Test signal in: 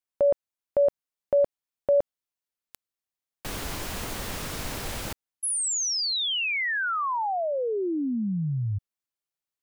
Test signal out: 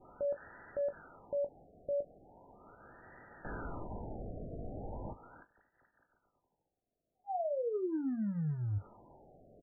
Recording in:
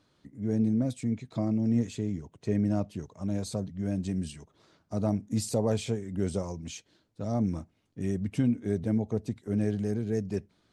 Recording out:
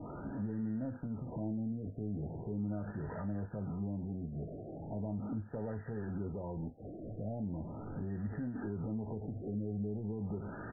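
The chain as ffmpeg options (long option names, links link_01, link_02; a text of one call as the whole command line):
ffmpeg -i in.wav -filter_complex "[0:a]aeval=exprs='val(0)+0.5*0.0106*sgn(val(0))':channel_layout=same,adynamicequalizer=threshold=0.00355:dfrequency=1600:dqfactor=2.2:tfrequency=1600:tqfactor=2.2:attack=5:release=100:ratio=0.375:range=3:mode=boostabove:tftype=bell,acompressor=threshold=-37dB:ratio=6:attack=0.19:release=82:knee=6:detection=peak,asuperstop=centerf=1100:order=12:qfactor=6.8,asplit=2[link_01][link_02];[link_02]aecho=0:1:19|40:0.335|0.188[link_03];[link_01][link_03]amix=inputs=2:normalize=0,afftfilt=real='re*lt(b*sr/1024,730*pow(2000/730,0.5+0.5*sin(2*PI*0.39*pts/sr)))':imag='im*lt(b*sr/1024,730*pow(2000/730,0.5+0.5*sin(2*PI*0.39*pts/sr)))':win_size=1024:overlap=0.75,volume=2dB" out.wav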